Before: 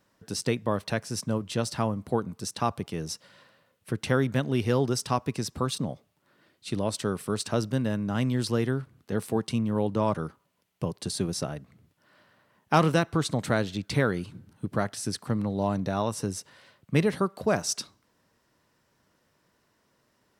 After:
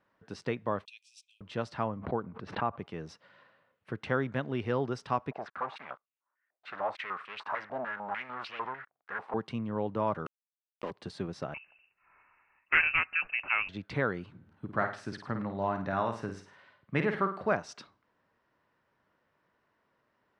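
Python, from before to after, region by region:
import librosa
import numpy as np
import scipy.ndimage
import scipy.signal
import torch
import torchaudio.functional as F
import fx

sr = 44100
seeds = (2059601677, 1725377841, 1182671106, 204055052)

y = fx.chain(x, sr, fx.cheby_ripple_highpass(hz=2400.0, ripple_db=6),
    fx.high_shelf(hz=4300.0, db=3.5), at=(0.85, 1.41))
y = fx.chain(y, sr, fx.air_absorb(metres=390.0),
    fx.pre_swell(db_per_s=85.0), at=(1.99, 2.79))
y = fx.chain(y, sr, fx.leveller(passes=5),
    fx.filter_held_bandpass(hz=6.7, low_hz=690.0, high_hz=2700.0), at=(5.31, 9.34))
y = fx.chain(y, sr, fx.highpass(hz=230.0, slope=24),
    fx.sample_gate(floor_db=-35.5),
    fx.env_flatten(amount_pct=50), at=(10.26, 10.91))
y = fx.chain(y, sr, fx.freq_invert(carrier_hz=2800),
    fx.low_shelf(hz=160.0, db=6.0),
    fx.doppler_dist(depth_ms=0.15), at=(11.54, 13.69))
y = fx.chain(y, sr, fx.dynamic_eq(hz=1600.0, q=1.2, threshold_db=-46.0, ratio=4.0, max_db=5),
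    fx.notch(hz=480.0, q=13.0),
    fx.room_flutter(wall_m=9.0, rt60_s=0.4), at=(14.36, 17.53))
y = scipy.signal.sosfilt(scipy.signal.butter(2, 2000.0, 'lowpass', fs=sr, output='sos'), y)
y = fx.low_shelf(y, sr, hz=500.0, db=-9.5)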